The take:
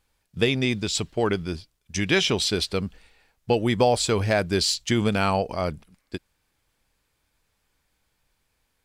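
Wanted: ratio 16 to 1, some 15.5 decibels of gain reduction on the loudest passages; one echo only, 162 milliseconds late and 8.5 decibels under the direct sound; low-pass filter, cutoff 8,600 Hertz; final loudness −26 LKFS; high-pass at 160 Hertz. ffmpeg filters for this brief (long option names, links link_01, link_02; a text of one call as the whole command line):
ffmpeg -i in.wav -af "highpass=160,lowpass=8600,acompressor=threshold=-30dB:ratio=16,aecho=1:1:162:0.376,volume=9dB" out.wav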